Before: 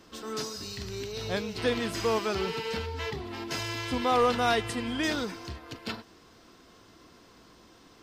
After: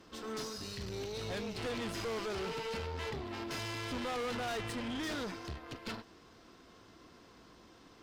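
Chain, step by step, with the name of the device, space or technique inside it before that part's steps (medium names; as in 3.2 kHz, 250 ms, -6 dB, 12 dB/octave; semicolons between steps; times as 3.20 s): tube preamp driven hard (valve stage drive 36 dB, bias 0.65; treble shelf 5.8 kHz -6 dB); trim +1 dB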